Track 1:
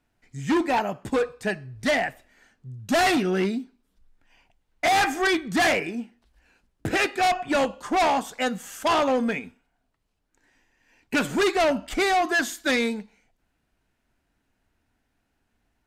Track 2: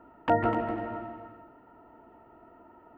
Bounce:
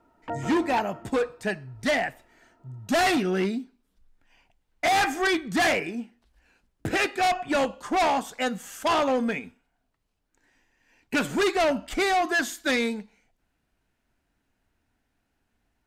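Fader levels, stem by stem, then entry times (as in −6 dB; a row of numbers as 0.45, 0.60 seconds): −1.5, −9.0 decibels; 0.00, 0.00 seconds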